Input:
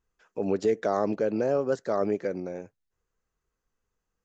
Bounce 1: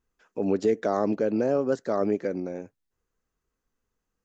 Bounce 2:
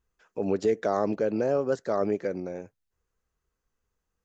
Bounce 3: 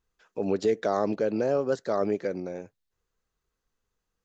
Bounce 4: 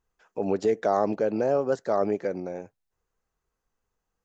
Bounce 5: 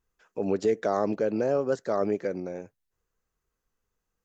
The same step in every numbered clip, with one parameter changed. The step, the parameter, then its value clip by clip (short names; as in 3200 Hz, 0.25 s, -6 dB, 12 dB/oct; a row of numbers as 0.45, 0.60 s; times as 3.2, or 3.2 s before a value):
bell, frequency: 260, 66, 3900, 790, 15000 Hz